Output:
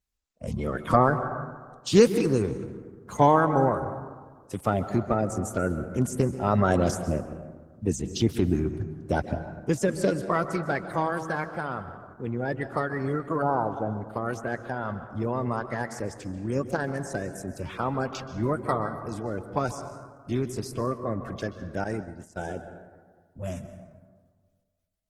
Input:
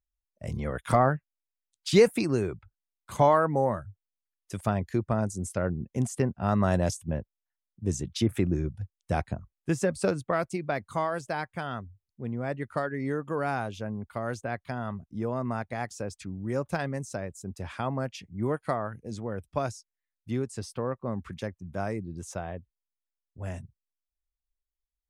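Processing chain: coarse spectral quantiser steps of 30 dB; 13.42–13.93 s: FFT filter 240 Hz 0 dB, 450 Hz +2 dB, 960 Hz +7 dB, 1.9 kHz -18 dB; plate-style reverb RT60 1.6 s, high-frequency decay 0.4×, pre-delay 120 ms, DRR 10 dB; 21.84–22.39 s: expander -30 dBFS; trim +3 dB; Opus 16 kbps 48 kHz

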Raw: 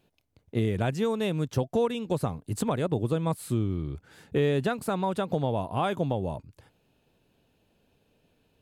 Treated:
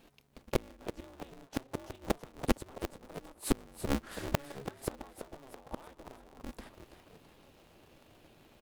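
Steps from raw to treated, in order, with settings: inverted gate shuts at -21 dBFS, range -34 dB; frequency-shifting echo 331 ms, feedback 48%, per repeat +100 Hz, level -10 dB; polarity switched at an audio rate 140 Hz; trim +7 dB

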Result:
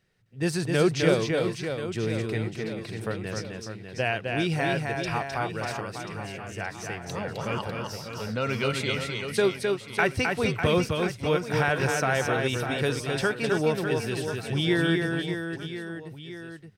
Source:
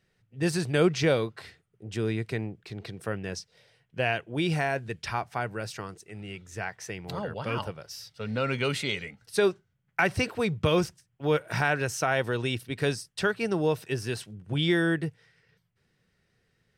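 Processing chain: reverse bouncing-ball echo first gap 260 ms, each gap 1.3×, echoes 5

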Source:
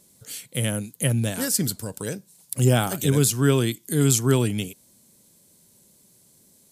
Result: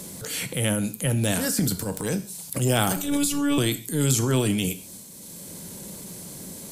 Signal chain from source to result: transient shaper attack -10 dB, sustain +8 dB; 2.96–3.58 s: robot voice 287 Hz; gated-style reverb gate 170 ms falling, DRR 10 dB; three bands compressed up and down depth 70%

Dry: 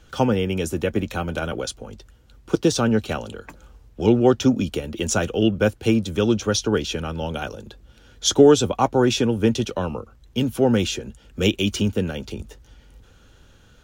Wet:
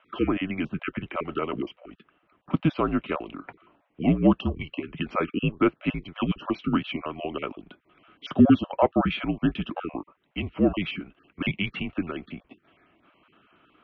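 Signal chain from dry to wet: random holes in the spectrogram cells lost 22%; 1.06–2.95 s: short-mantissa float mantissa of 4-bit; mistuned SSB -180 Hz 370–3000 Hz

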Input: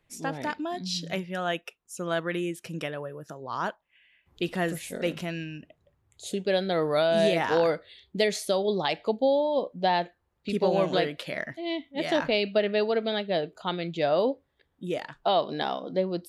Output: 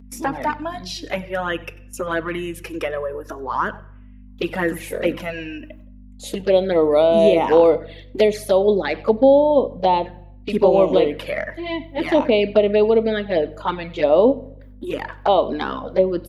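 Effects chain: ten-band graphic EQ 125 Hz -8 dB, 250 Hz +11 dB, 500 Hz +7 dB, 1 kHz +9 dB, 2 kHz +5 dB, 4 kHz -5 dB, 8 kHz -11 dB; gate with hold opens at -40 dBFS; hum 50 Hz, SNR 19 dB; high-pass 69 Hz 6 dB/octave; echo from a far wall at 16 m, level -22 dB; touch-sensitive flanger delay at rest 4.5 ms, full sweep at -12.5 dBFS; treble shelf 4.1 kHz +10 dB; band-stop 700 Hz, Q 14; on a send at -17 dB: reverberation RT60 0.65 s, pre-delay 5 ms; on the sum: tape noise reduction on one side only encoder only; trim +1.5 dB

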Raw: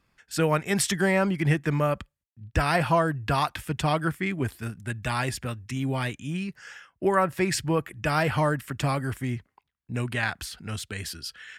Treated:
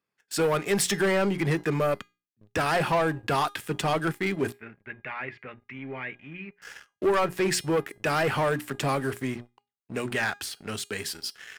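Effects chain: high-pass 170 Hz 12 dB/octave; peaking EQ 430 Hz +5 dB 0.52 oct; hum notches 60/120/180/240/300/360 Hz; waveshaping leveller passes 3; 4.52–6.62 s: four-pole ladder low-pass 2.4 kHz, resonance 65%; feedback comb 410 Hz, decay 0.29 s, harmonics all, mix 50%; trim -3.5 dB

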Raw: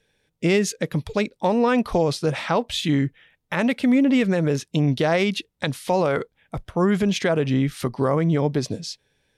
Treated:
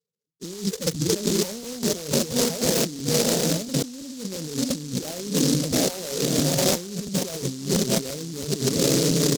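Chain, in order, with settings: median filter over 41 samples; tilt EQ +2 dB/octave; in parallel at -4 dB: crossover distortion -42.5 dBFS; on the sum: gate -47 dBFS, range -26 dB; loudest bins only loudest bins 8; high-pass 130 Hz 24 dB/octave; doubling 46 ms -13.5 dB; echo that smears into a reverb 759 ms, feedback 47%, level -12.5 dB; compressor with a negative ratio -35 dBFS, ratio -1; crackling interface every 0.34 s, samples 512, repeat, from 0.94 s; delay time shaken by noise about 5.4 kHz, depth 0.24 ms; trim +7.5 dB

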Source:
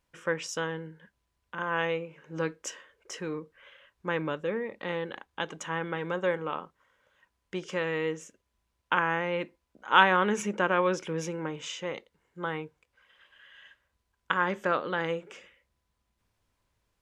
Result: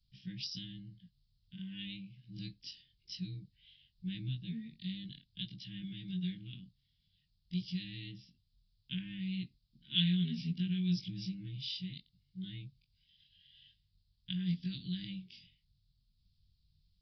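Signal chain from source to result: short-time spectra conjugated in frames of 44 ms; elliptic band-stop 160–4100 Hz, stop band 60 dB; resampled via 11.025 kHz; trim +10.5 dB

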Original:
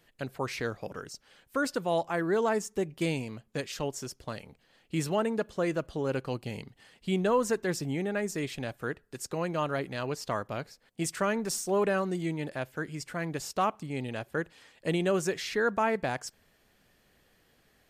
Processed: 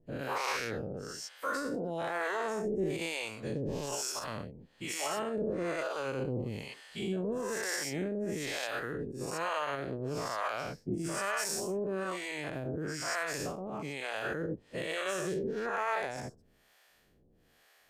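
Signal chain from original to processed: every event in the spectrogram widened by 240 ms; peak limiter -19 dBFS, peak gain reduction 11 dB; harmonic tremolo 1.1 Hz, depth 100%, crossover 520 Hz; trim -1.5 dB

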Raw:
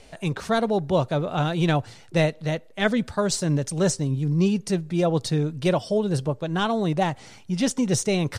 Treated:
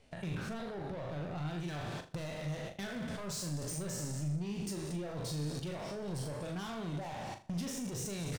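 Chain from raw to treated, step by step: spectral sustain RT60 1.32 s; bass shelf 84 Hz -10 dB; feedback delay 243 ms, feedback 50%, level -19.5 dB; level held to a coarse grid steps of 15 dB; reverb removal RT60 0.75 s; hard clipper -32.5 dBFS, distortion -10 dB; compression 6:1, threshold -49 dBFS, peak gain reduction 13.5 dB; tone controls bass +8 dB, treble -4 dB, from 1.58 s treble +4 dB; gate -52 dBFS, range -12 dB; flutter echo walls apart 6.9 m, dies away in 0.3 s; trim +5 dB

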